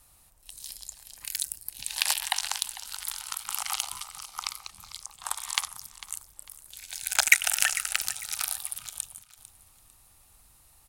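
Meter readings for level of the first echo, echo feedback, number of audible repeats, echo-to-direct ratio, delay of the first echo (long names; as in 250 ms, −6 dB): −16.5 dB, 29%, 2, −16.0 dB, 449 ms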